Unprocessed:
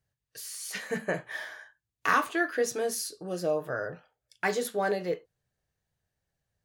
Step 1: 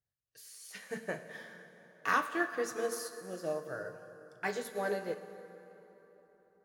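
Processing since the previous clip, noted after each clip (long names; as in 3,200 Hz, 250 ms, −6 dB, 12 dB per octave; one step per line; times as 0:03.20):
dense smooth reverb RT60 4.1 s, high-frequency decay 0.6×, DRR 5.5 dB
expander for the loud parts 1.5 to 1, over −37 dBFS
level −4.5 dB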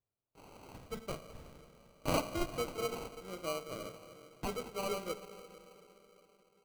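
decimation without filtering 25×
level −2.5 dB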